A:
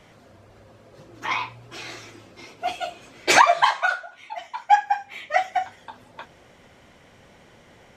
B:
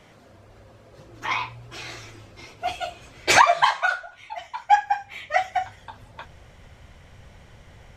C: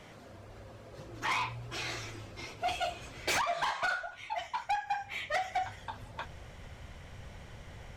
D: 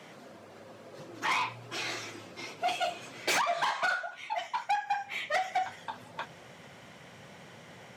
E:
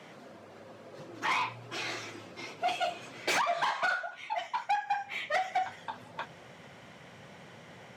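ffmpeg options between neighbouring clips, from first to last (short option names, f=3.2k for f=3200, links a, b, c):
-af "asubboost=boost=7:cutoff=100"
-af "acompressor=threshold=-22dB:ratio=8,asoftclip=type=tanh:threshold=-26.5dB"
-af "highpass=f=150:w=0.5412,highpass=f=150:w=1.3066,volume=2.5dB"
-af "highshelf=f=5.9k:g=-6"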